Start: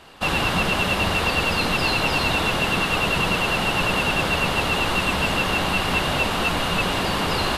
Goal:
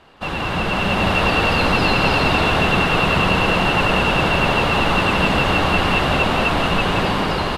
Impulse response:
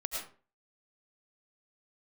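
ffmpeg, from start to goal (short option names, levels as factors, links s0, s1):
-af "aecho=1:1:174.9|250.7:0.562|0.282,dynaudnorm=f=250:g=7:m=3.76,lowpass=f=2500:p=1,volume=0.841"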